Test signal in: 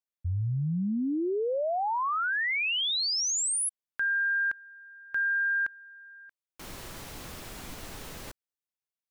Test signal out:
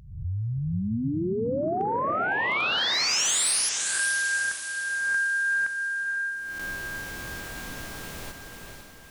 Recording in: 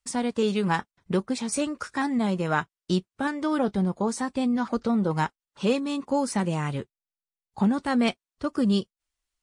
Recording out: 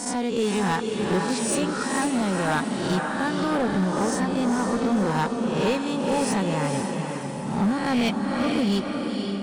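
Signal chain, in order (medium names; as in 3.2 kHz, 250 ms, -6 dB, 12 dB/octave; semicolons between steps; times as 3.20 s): reverse spectral sustain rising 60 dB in 0.77 s; echo that smears into a reverb 492 ms, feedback 49%, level -4.5 dB; overload inside the chain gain 17.5 dB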